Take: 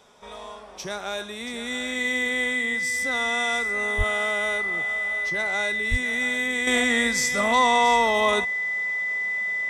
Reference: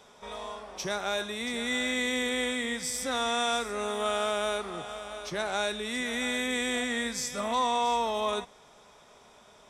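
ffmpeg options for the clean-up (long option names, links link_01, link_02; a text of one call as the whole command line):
ffmpeg -i in.wav -filter_complex "[0:a]bandreject=frequency=2000:width=30,asplit=3[link_01][link_02][link_03];[link_01]afade=type=out:start_time=3.97:duration=0.02[link_04];[link_02]highpass=frequency=140:width=0.5412,highpass=frequency=140:width=1.3066,afade=type=in:start_time=3.97:duration=0.02,afade=type=out:start_time=4.09:duration=0.02[link_05];[link_03]afade=type=in:start_time=4.09:duration=0.02[link_06];[link_04][link_05][link_06]amix=inputs=3:normalize=0,asplit=3[link_07][link_08][link_09];[link_07]afade=type=out:start_time=5.9:duration=0.02[link_10];[link_08]highpass=frequency=140:width=0.5412,highpass=frequency=140:width=1.3066,afade=type=in:start_time=5.9:duration=0.02,afade=type=out:start_time=6.02:duration=0.02[link_11];[link_09]afade=type=in:start_time=6.02:duration=0.02[link_12];[link_10][link_11][link_12]amix=inputs=3:normalize=0,asetnsamples=nb_out_samples=441:pad=0,asendcmd='6.67 volume volume -7.5dB',volume=0dB" out.wav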